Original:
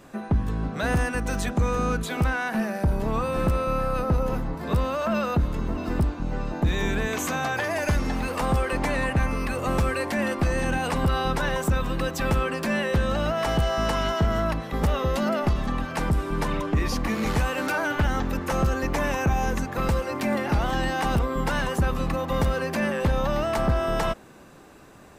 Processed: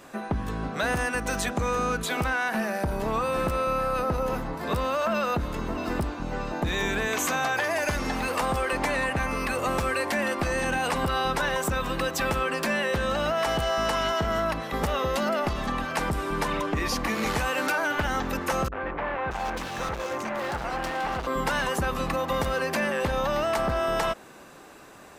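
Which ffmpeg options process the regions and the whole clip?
ffmpeg -i in.wav -filter_complex "[0:a]asettb=1/sr,asplit=3[link_01][link_02][link_03];[link_01]atrim=end=18.684[link_04];[link_02]atrim=start=18.68:end=21.27,asetpts=PTS-STARTPTS,afade=type=in:duration=0.004:curve=qsin,afade=type=out:start_time=2.586:duration=0.004:curve=qsin,lowpass=frequency=3800:poles=1,asoftclip=type=hard:threshold=-27.5dB,acrossover=split=300|2500[link_05][link_06][link_07];[link_06]adelay=40[link_08];[link_07]adelay=630[link_09];[link_05][link_08][link_09]amix=inputs=3:normalize=0,atrim=end_sample=114219[link_10];[link_03]atrim=start=21.266[link_11];[link_04][link_10]acrossfade=duration=0.004:curve1=hsin:curve2=qsin[link_12];[link_12][link_11]acrossfade=duration=0.004:curve1=qsin:curve2=hsin,lowshelf=frequency=270:gain=-11,acompressor=threshold=-26dB:ratio=6,volume=4dB" out.wav

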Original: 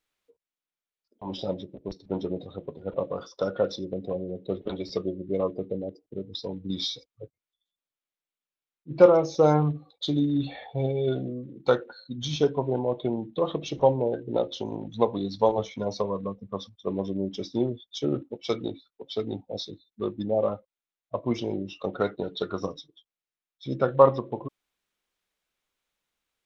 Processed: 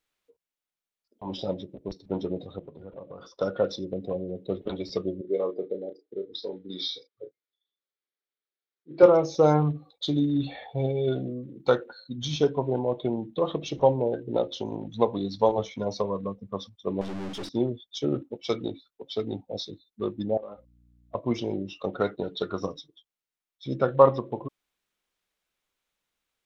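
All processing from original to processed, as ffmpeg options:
ffmpeg -i in.wav -filter_complex "[0:a]asettb=1/sr,asplit=3[link_01][link_02][link_03];[link_01]atrim=end=2.594[link_04];[link_02]atrim=start=2.59:end=3.41,asetpts=PTS-STARTPTS,afade=type=in:duration=0.004:curve=qsin,afade=type=out:start_time=0.816:duration=0.004:curve=qsin,bass=frequency=250:gain=2,treble=frequency=4000:gain=-6,acompressor=threshold=-40dB:ratio=4:attack=3.2:release=140:knee=1:detection=peak[link_05];[link_03]atrim=start=3.406[link_06];[link_04][link_05]acrossfade=duration=0.004:curve1=hsin:curve2=qsin[link_07];[link_07][link_06]acrossfade=duration=0.004:curve1=qsin:curve2=hsin,asettb=1/sr,asplit=3[link_08][link_09][link_10];[link_08]atrim=end=5.214[link_11];[link_09]atrim=start=5.21:end=9.03,asetpts=PTS-STARTPTS,afade=type=in:duration=0.004:curve=qsin,afade=type=out:start_time=3.816:duration=0.004:curve=qsin,highpass=350,equalizer=frequency=400:width_type=q:width=4:gain=6,equalizer=frequency=680:width_type=q:width=4:gain=-5,equalizer=frequency=1000:width_type=q:width=4:gain=-8,equalizer=frequency=2700:width_type=q:width=4:gain=-7,lowpass=frequency=4700:width=0.5412,lowpass=frequency=4700:width=1.3066,asplit=2[link_12][link_13];[link_13]adelay=33,volume=-7dB[link_14];[link_12][link_14]amix=inputs=2:normalize=0,atrim=end_sample=168462[link_15];[link_10]atrim=start=9.026[link_16];[link_11][link_15]acrossfade=duration=0.004:curve1=hsin:curve2=qsin[link_17];[link_17][link_16]acrossfade=duration=0.004:curve1=qsin:curve2=hsin,asettb=1/sr,asplit=3[link_18][link_19][link_20];[link_18]atrim=end=17.014[link_21];[link_19]atrim=start=17.01:end=17.49,asetpts=PTS-STARTPTS,afade=type=in:duration=0.004:curve=qsin,afade=type=out:start_time=0.476:duration=0.004:curve=qsin,aeval=exprs='val(0)+0.5*0.0282*sgn(val(0))':channel_layout=same,lowpass=4700,aeval=exprs='(tanh(39.8*val(0)+0.6)-tanh(0.6))/39.8':channel_layout=same[link_22];[link_20]atrim=start=17.486[link_23];[link_21][link_22]acrossfade=duration=0.004:curve1=hsin:curve2=qsin[link_24];[link_24][link_23]acrossfade=duration=0.004:curve1=qsin:curve2=hsin,asettb=1/sr,asplit=3[link_25][link_26][link_27];[link_25]atrim=end=20.374[link_28];[link_26]atrim=start=20.37:end=21.15,asetpts=PTS-STARTPTS,afade=type=in:duration=0.004:curve=qsin,afade=type=out:start_time=0.776:duration=0.004:curve=qsin,highpass=210,aeval=exprs='val(0)+0.00112*(sin(2*PI*60*n/s)+sin(2*PI*2*60*n/s)/2+sin(2*PI*3*60*n/s)/3+sin(2*PI*4*60*n/s)/4+sin(2*PI*5*60*n/s)/5)':channel_layout=same,acompressor=threshold=-36dB:ratio=8:attack=3.2:release=140:knee=1:detection=peak[link_29];[link_27]atrim=start=21.146[link_30];[link_28][link_29]acrossfade=duration=0.004:curve1=hsin:curve2=qsin[link_31];[link_31][link_30]acrossfade=duration=0.004:curve1=qsin:curve2=hsin" out.wav

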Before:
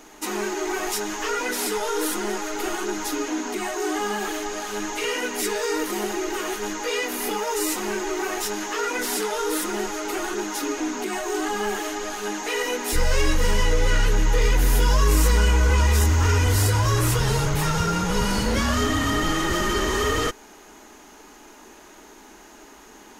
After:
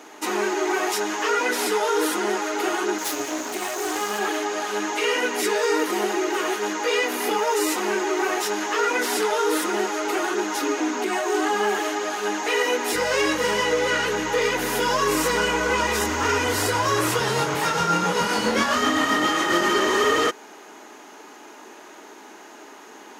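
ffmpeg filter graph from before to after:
ffmpeg -i in.wav -filter_complex "[0:a]asettb=1/sr,asplit=3[link_01][link_02][link_03];[link_01]atrim=end=2.984[link_04];[link_02]atrim=start=2.98:end=4.19,asetpts=PTS-STARTPTS,afade=type=in:duration=0.004:curve=qsin,afade=type=out:start_time=1.206:duration=0.004:curve=qsin,aemphasis=mode=production:type=50kf,aeval=exprs='max(val(0),0)':channel_layout=same[link_05];[link_03]atrim=start=4.186[link_06];[link_04][link_05]acrossfade=duration=0.004:curve1=hsin:curve2=qsin[link_07];[link_07][link_06]acrossfade=duration=0.004:curve1=qsin:curve2=hsin,asettb=1/sr,asplit=3[link_08][link_09][link_10];[link_08]atrim=end=17.274[link_11];[link_09]atrim=start=17.27:end=19.69,asetpts=PTS-STARTPTS,afade=type=in:duration=0.004:curve=qsin,afade=type=out:start_time=2.416:duration=0.004:curve=qsin,asplit=2[link_12][link_13];[link_13]adelay=23,volume=-4.5dB[link_14];[link_12][link_14]amix=inputs=2:normalize=0,atrim=end_sample=106722,tremolo=f=7.5:d=0.32[link_15];[link_10]atrim=start=19.686[link_16];[link_11][link_15]acrossfade=duration=0.004:curve1=hsin:curve2=qsin[link_17];[link_17][link_16]acrossfade=duration=0.004:curve1=qsin:curve2=hsin,highpass=300,highshelf=frequency=5300:gain=-8.5,volume=5dB" out.wav

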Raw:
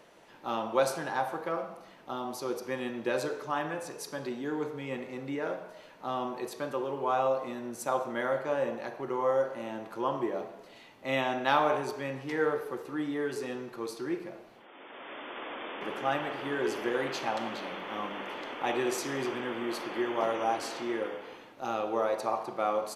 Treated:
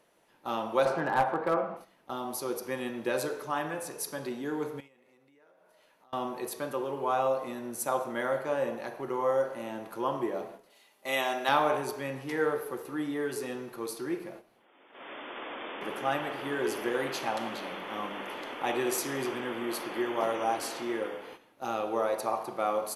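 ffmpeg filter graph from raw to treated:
ffmpeg -i in.wav -filter_complex "[0:a]asettb=1/sr,asplit=3[link_01][link_02][link_03];[link_01]atrim=end=0.854[link_04];[link_02]atrim=start=0.85:end=1.77,asetpts=PTS-STARTPTS,afade=type=in:duration=0.004:curve=qsin,afade=type=out:start_time=0.916:duration=0.004:curve=qsin,acontrast=39,highpass=100,lowpass=2100,aeval=exprs='clip(val(0),-1,0.0944)':channel_layout=same[link_05];[link_03]atrim=start=1.766[link_06];[link_04][link_05]acrossfade=duration=0.004:curve1=hsin:curve2=qsin[link_07];[link_07][link_06]acrossfade=duration=0.004:curve1=qsin:curve2=hsin,asettb=1/sr,asplit=3[link_08][link_09][link_10];[link_08]atrim=end=4.804[link_11];[link_09]atrim=start=4.8:end=6.13,asetpts=PTS-STARTPTS,afade=type=in:duration=0.004:curve=qsin,afade=type=out:start_time=1.326:duration=0.004:curve=qsin,acompressor=threshold=-47dB:ratio=8:attack=3.2:release=140:knee=1:detection=peak,lowshelf=frequency=330:gain=-8.5[link_12];[link_10]atrim=start=6.126[link_13];[link_11][link_12]acrossfade=duration=0.004:curve1=hsin:curve2=qsin[link_14];[link_14][link_13]acrossfade=duration=0.004:curve1=qsin:curve2=hsin,asettb=1/sr,asplit=3[link_15][link_16][link_17];[link_15]atrim=end=10.704[link_18];[link_16]atrim=start=10.7:end=11.49,asetpts=PTS-STARTPTS,afade=type=in:duration=0.004:curve=qsin,afade=type=out:start_time=0.786:duration=0.004:curve=qsin,bass=frequency=250:gain=-14,treble=frequency=4000:gain=7,aecho=1:1:5:0.34,atrim=end_sample=34839[link_19];[link_17]atrim=start=11.486[link_20];[link_18][link_19]acrossfade=duration=0.004:curve1=hsin:curve2=qsin[link_21];[link_21][link_20]acrossfade=duration=0.004:curve1=qsin:curve2=hsin,agate=range=-10dB:threshold=-46dB:ratio=16:detection=peak,equalizer=frequency=11000:width_type=o:width=0.55:gain=12.5" out.wav

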